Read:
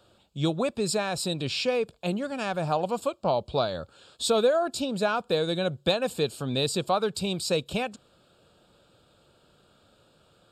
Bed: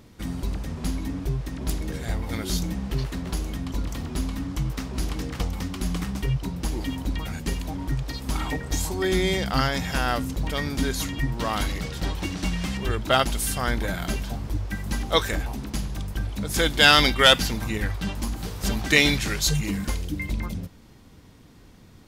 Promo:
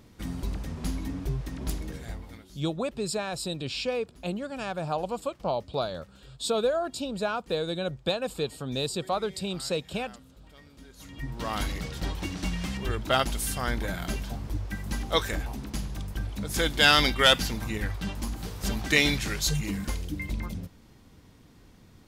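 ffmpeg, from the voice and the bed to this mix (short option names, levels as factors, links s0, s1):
-filter_complex "[0:a]adelay=2200,volume=0.668[s0];[1:a]volume=7.94,afade=t=out:st=1.63:d=0.85:silence=0.0794328,afade=t=in:st=10.96:d=0.63:silence=0.0841395[s1];[s0][s1]amix=inputs=2:normalize=0"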